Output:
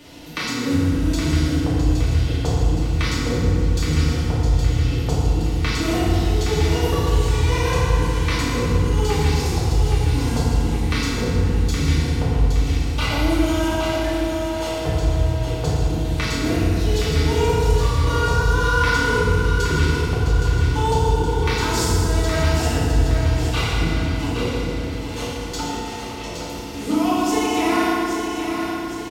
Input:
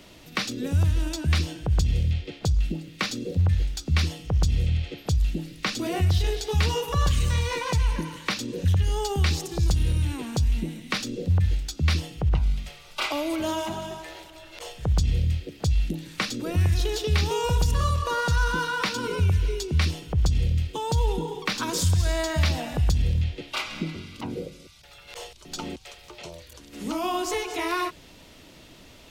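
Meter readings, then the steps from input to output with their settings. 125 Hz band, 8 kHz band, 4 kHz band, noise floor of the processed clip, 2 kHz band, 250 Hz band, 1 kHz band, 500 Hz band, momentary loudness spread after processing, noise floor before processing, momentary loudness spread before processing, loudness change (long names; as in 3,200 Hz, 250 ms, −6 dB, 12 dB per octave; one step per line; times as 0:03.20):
+5.0 dB, +5.0 dB, +4.0 dB, −29 dBFS, +7.0 dB, +10.0 dB, +7.0 dB, +8.5 dB, 6 LU, −50 dBFS, 12 LU, +5.5 dB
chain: downward compressor, threshold −27 dBFS, peak gain reduction 10.5 dB
repeating echo 818 ms, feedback 49%, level −6.5 dB
feedback delay network reverb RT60 2.9 s, low-frequency decay 1.2×, high-frequency decay 0.55×, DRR −9 dB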